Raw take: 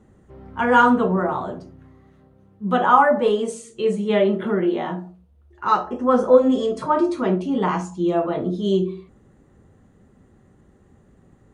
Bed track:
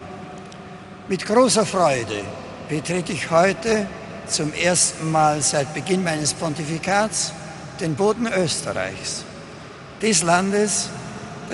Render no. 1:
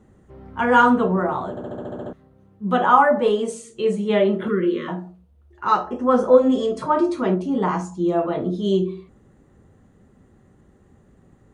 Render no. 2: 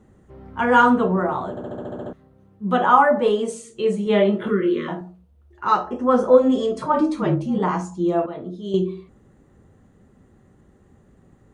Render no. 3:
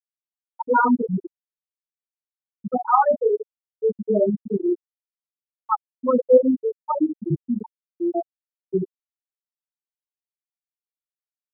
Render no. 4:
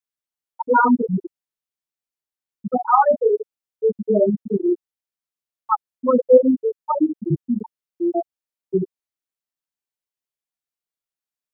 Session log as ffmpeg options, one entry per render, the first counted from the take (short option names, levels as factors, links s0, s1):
-filter_complex "[0:a]asettb=1/sr,asplit=3[s0][s1][s2];[s0]atrim=end=4.484[s3];[s1]atrim=start=4.48:end=4.88,asetpts=PTS-STARTPTS,afade=t=in:d=0.004:c=qsin,afade=t=out:st=0.396:d=0.004:c=qsin,asuperstop=centerf=760:order=20:qfactor=1.6[s4];[s2]atrim=start=4.876[s5];[s3][s4]acrossfade=d=0.004:c1=hsin:c2=qsin[s6];[s6][s5]acrossfade=d=0.004:c1=qsin:c2=hsin,asettb=1/sr,asplit=3[s7][s8][s9];[s7]atrim=end=7.344[s10];[s8]atrim=start=7.34:end=8.19,asetpts=PTS-STARTPTS,afade=t=in:d=0.004:c=qsin,afade=t=out:st=0.846:d=0.004:c=qsin,equalizer=f=2800:w=1.5:g=-6[s11];[s9]atrim=start=8.186[s12];[s10][s11]acrossfade=d=0.004:c1=hsin:c2=qsin[s13];[s13][s12]acrossfade=d=0.004:c1=qsin:c2=hsin,asplit=10[s14][s15][s16][s17][s18][s19][s20][s21][s22][s23];[s14]atrim=end=1.572[s24];[s15]atrim=start=1.498:end=1.572[s25];[s16]atrim=start=1.498:end=1.572[s26];[s17]atrim=start=1.498:end=1.572[s27];[s18]atrim=start=1.498:end=1.572[s28];[s19]atrim=start=1.498:end=1.572[s29];[s20]atrim=start=1.498:end=1.572[s30];[s21]atrim=start=1.498:end=1.572[s31];[s22]atrim=start=1.498:end=1.572[s32];[s23]atrim=start=2.128[s33];[s24][s25]acrossfade=d=0.004:c1=hsin:c2=hsin[s34];[s34][s26]acrossfade=d=0.004:c1=hsin:c2=hsin[s35];[s35][s27]acrossfade=d=0.004:c1=hsin:c2=hsin[s36];[s36][s28]acrossfade=d=0.004:c1=hsin:c2=hsin[s37];[s37][s29]acrossfade=d=0.004:c1=hsin:c2=hsin[s38];[s38][s30]acrossfade=d=0.004:c1=hsin:c2=hsin[s39];[s39][s31]acrossfade=d=0.004:c1=hsin:c2=hsin[s40];[s40][s32]acrossfade=d=0.004:c1=hsin:c2=hsin[s41];[s41][s33]acrossfade=d=0.004:c1=hsin:c2=hsin"
-filter_complex "[0:a]asettb=1/sr,asplit=3[s0][s1][s2];[s0]atrim=end=4.044[s3];[s1]atrim=start=4.04:end=5.01,asetpts=PTS-STARTPTS,afade=t=in:d=0.004:c=qsin,afade=t=out:st=0.966:d=0.004:c=qsin,asplit=2[s4][s5];[s5]adelay=25,volume=0.501[s6];[s4][s6]amix=inputs=2:normalize=0,atrim=end_sample=42777[s7];[s2]atrim=start=5.006[s8];[s3][s7]acrossfade=d=0.004:c1=hsin:c2=qsin[s9];[s9][s8]acrossfade=d=0.004:c1=qsin:c2=hsin,asplit=3[s10][s11][s12];[s10]afade=t=out:st=6.92:d=0.02[s13];[s11]afreqshift=-37,afade=t=in:st=6.92:d=0.02,afade=t=out:st=7.58:d=0.02[s14];[s12]afade=t=in:st=7.58:d=0.02[s15];[s13][s14][s15]amix=inputs=3:normalize=0,asplit=3[s16][s17][s18];[s16]atrim=end=8.262[s19];[s17]atrim=start=8.258:end=8.742,asetpts=PTS-STARTPTS,volume=0.376[s20];[s18]atrim=start=8.738[s21];[s19][s20]acrossfade=d=0.004:c1=hsin:c2=hsin[s22];[s22][s21]acrossfade=d=0.004:c1=hsin:c2=hsin"
-af "afftfilt=real='re*gte(hypot(re,im),0.891)':imag='im*gte(hypot(re,im),0.891)':win_size=1024:overlap=0.75,equalizer=f=1900:w=2:g=-11"
-af "volume=1.33,alimiter=limit=0.794:level=0:latency=1"